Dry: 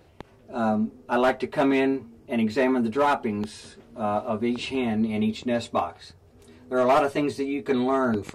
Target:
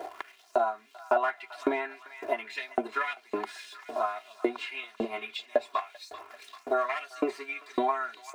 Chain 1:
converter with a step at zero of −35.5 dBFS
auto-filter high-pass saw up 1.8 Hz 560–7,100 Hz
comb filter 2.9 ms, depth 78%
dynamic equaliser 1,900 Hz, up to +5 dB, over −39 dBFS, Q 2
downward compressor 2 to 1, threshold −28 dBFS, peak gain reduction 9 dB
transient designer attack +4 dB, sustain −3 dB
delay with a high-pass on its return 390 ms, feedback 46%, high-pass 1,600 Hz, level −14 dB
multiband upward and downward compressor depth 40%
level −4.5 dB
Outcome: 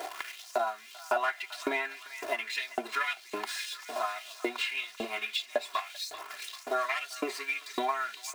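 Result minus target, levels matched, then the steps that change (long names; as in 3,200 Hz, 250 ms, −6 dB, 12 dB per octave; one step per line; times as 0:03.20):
converter with a step at zero: distortion +8 dB; 2,000 Hz band +4.0 dB
change: converter with a step at zero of −44 dBFS
add after downward compressor: tilt shelving filter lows +7.5 dB, about 1,500 Hz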